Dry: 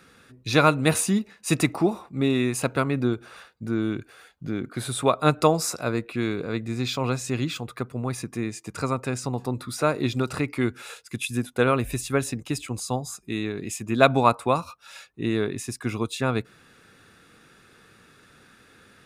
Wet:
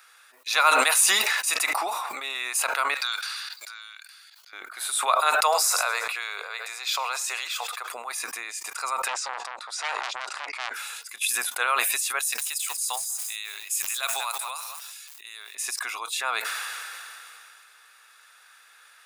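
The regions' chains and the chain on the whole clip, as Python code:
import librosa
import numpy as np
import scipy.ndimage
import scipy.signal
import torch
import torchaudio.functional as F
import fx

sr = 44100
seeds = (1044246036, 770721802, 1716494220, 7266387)

y = fx.chain(x, sr, fx.highpass(hz=1400.0, slope=12),
    fx.peak_eq(hz=4500.0, db=13.0, octaves=0.5),
    fx.level_steps(step_db=18), at=(2.94, 4.53))
y = fx.chain(y, sr, fx.steep_highpass(hz=390.0, slope=48),
    fx.echo_warbled(ms=106, feedback_pct=37, rate_hz=2.8, cents=59, wet_db=-21), at=(5.35, 7.91))
y = fx.chain(y, sr, fx.lowpass(hz=7400.0, slope=24),
    fx.transformer_sat(knee_hz=3300.0), at=(9.08, 10.74))
y = fx.chain(y, sr, fx.pre_emphasis(coefficient=0.9),
    fx.echo_crushed(ms=190, feedback_pct=35, bits=8, wet_db=-12.0), at=(12.19, 15.55))
y = scipy.signal.sosfilt(scipy.signal.butter(4, 820.0, 'highpass', fs=sr, output='sos'), y)
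y = fx.high_shelf(y, sr, hz=9400.0, db=9.5)
y = fx.sustainer(y, sr, db_per_s=20.0)
y = F.gain(torch.from_numpy(y), 1.0).numpy()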